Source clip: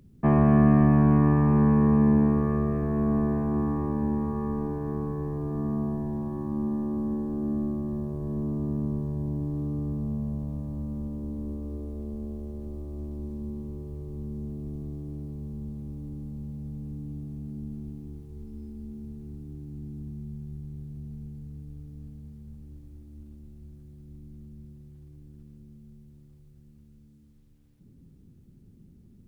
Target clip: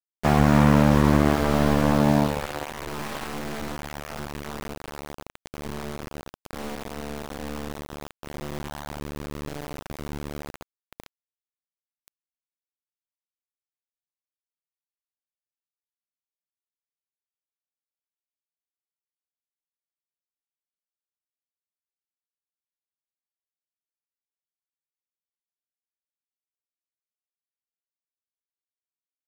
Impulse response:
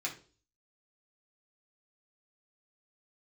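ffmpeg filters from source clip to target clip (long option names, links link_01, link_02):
-af "aeval=exprs='0.376*(cos(1*acos(clip(val(0)/0.376,-1,1)))-cos(1*PI/2))+0.0596*(cos(4*acos(clip(val(0)/0.376,-1,1)))-cos(4*PI/2))+0.0668*(cos(6*acos(clip(val(0)/0.376,-1,1)))-cos(6*PI/2))+0.119*(cos(7*acos(clip(val(0)/0.376,-1,1)))-cos(7*PI/2))+0.0075*(cos(8*acos(clip(val(0)/0.376,-1,1)))-cos(8*PI/2))':channel_layout=same,aeval=exprs='val(0)*gte(abs(val(0)),0.0531)':channel_layout=same"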